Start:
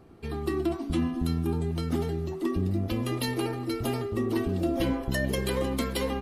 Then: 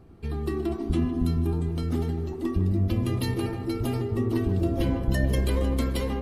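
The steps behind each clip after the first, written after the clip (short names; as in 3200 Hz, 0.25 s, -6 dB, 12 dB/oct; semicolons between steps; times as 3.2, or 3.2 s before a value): low shelf 160 Hz +11 dB; darkening echo 0.154 s, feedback 81%, low-pass 1400 Hz, level -9 dB; gain -3 dB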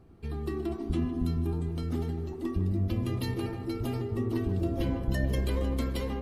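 dynamic EQ 9800 Hz, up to -4 dB, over -57 dBFS, Q 2.1; gain -4.5 dB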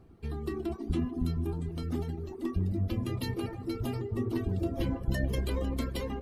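reverb removal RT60 0.68 s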